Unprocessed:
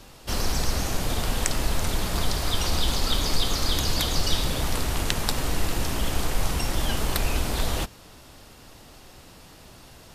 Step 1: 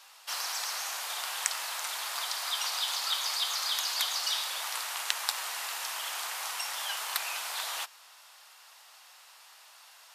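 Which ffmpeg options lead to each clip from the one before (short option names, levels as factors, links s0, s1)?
-af "highpass=f=860:w=0.5412,highpass=f=860:w=1.3066,volume=0.75"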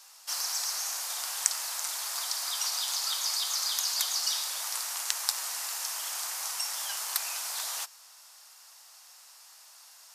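-af "highshelf=f=4300:t=q:w=1.5:g=7,volume=0.668"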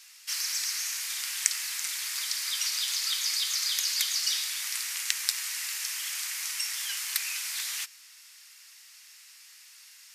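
-af "highpass=f=2100:t=q:w=2.5"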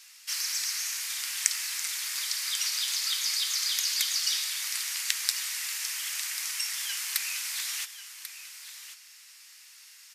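-af "aecho=1:1:1091:0.251"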